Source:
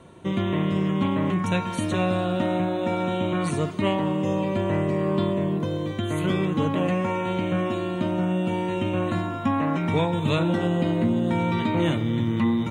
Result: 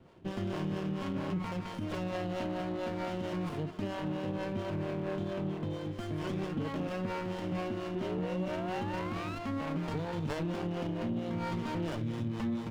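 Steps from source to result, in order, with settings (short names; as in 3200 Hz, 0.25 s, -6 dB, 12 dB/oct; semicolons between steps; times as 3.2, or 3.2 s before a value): harmonic tremolo 4.4 Hz, depth 70%, crossover 430 Hz; painted sound rise, 7.95–9.39, 360–1400 Hz -32 dBFS; limiter -20 dBFS, peak gain reduction 6 dB; resonant high shelf 4100 Hz -9 dB, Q 3; running maximum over 17 samples; gain -6 dB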